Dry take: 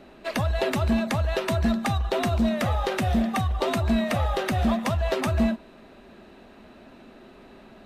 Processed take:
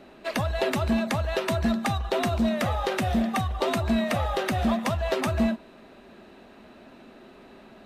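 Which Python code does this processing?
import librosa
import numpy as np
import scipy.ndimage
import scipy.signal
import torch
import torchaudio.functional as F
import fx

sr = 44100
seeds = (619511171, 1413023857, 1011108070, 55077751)

y = fx.low_shelf(x, sr, hz=93.0, db=-6.5)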